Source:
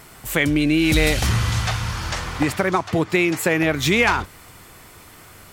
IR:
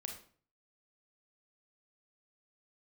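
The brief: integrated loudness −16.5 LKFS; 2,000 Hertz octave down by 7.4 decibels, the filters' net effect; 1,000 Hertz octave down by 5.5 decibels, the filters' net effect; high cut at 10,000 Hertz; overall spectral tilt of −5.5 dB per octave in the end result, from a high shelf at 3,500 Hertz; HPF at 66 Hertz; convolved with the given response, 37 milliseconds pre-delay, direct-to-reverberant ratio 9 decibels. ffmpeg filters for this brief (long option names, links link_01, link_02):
-filter_complex "[0:a]highpass=66,lowpass=10000,equalizer=frequency=1000:width_type=o:gain=-5,equalizer=frequency=2000:width_type=o:gain=-6,highshelf=frequency=3500:gain=-5.5,asplit=2[link_01][link_02];[1:a]atrim=start_sample=2205,adelay=37[link_03];[link_02][link_03]afir=irnorm=-1:irlink=0,volume=-7dB[link_04];[link_01][link_04]amix=inputs=2:normalize=0,volume=5.5dB"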